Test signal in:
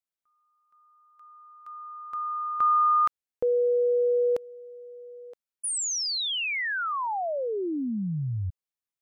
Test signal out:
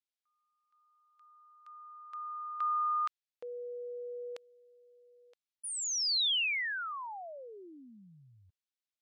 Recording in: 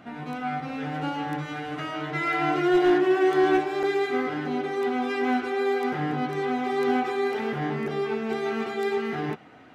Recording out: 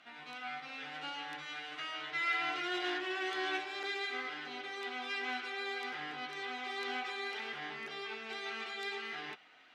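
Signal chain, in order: band-pass filter 3.6 kHz, Q 1.1

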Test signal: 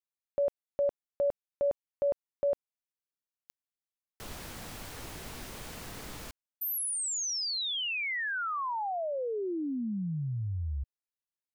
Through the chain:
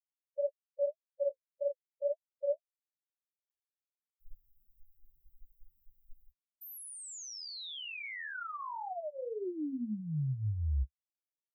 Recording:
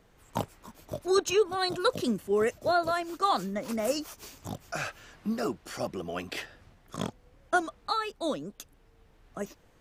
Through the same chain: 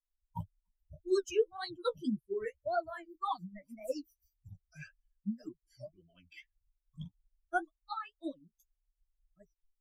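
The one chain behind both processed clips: expander on every frequency bin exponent 3; tilt EQ -2 dB/octave; flange 1.8 Hz, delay 7.1 ms, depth 9 ms, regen +20%; trim -1.5 dB

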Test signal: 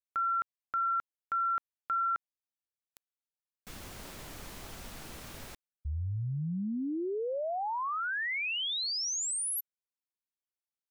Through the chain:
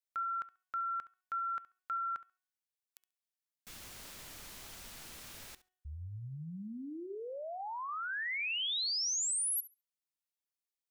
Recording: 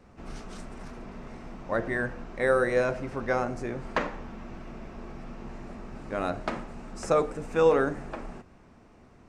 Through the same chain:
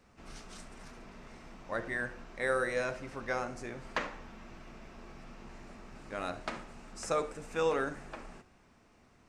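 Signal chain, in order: tilt shelf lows -5 dB, about 1.4 kHz; de-hum 369.6 Hz, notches 9; on a send: flutter echo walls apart 11.8 m, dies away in 0.24 s; on the sum: trim -5 dB

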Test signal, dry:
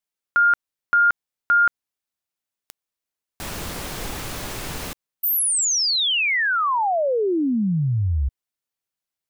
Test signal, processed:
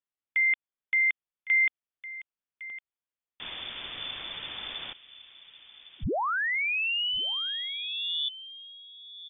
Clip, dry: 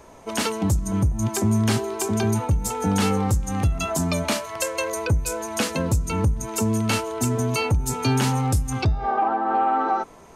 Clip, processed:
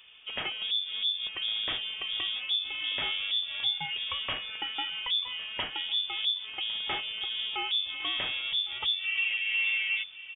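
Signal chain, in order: dynamic bell 150 Hz, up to -8 dB, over -36 dBFS, Q 0.8; echo from a far wall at 190 m, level -13 dB; frequency inversion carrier 3.5 kHz; trim -7.5 dB

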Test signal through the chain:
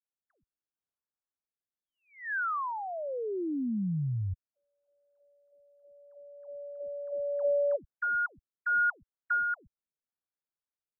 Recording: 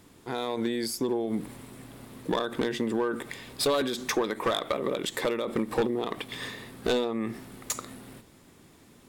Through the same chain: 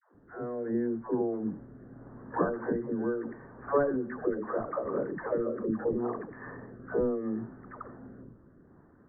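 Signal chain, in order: rotary cabinet horn 0.75 Hz; steep low-pass 1.7 kHz 72 dB/octave; phase dispersion lows, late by 146 ms, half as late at 490 Hz

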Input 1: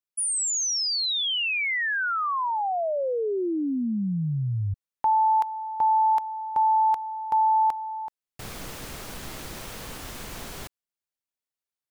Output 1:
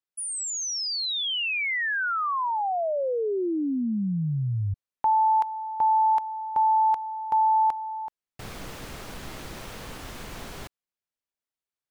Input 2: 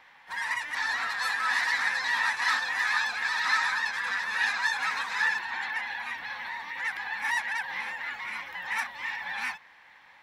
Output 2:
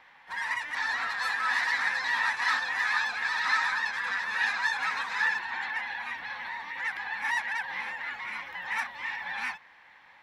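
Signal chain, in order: treble shelf 5.7 kHz -7.5 dB

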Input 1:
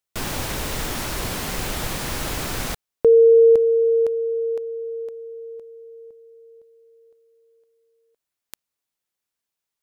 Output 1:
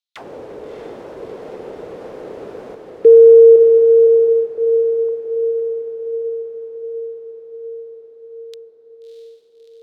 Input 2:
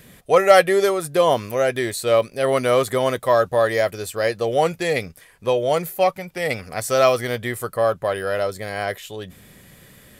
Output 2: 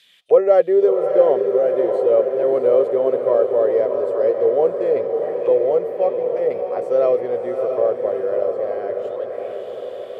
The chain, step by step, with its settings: auto-wah 450–3900 Hz, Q 4, down, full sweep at -23.5 dBFS; echo that smears into a reverb 655 ms, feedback 64%, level -5.5 dB; trim +6.5 dB

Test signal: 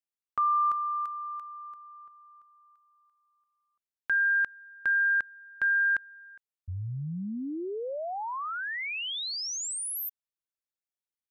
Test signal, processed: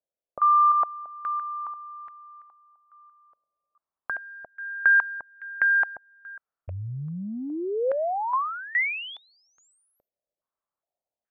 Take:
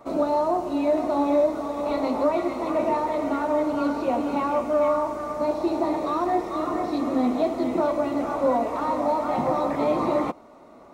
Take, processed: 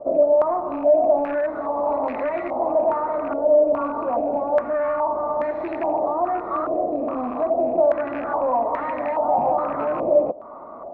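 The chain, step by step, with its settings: rattle on loud lows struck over -31 dBFS, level -20 dBFS; level rider gain up to 3 dB; saturation -15 dBFS; compression 2.5:1, threshold -32 dBFS; peaking EQ 630 Hz +6 dB 0.75 oct; step-sequenced low-pass 2.4 Hz 580–1900 Hz

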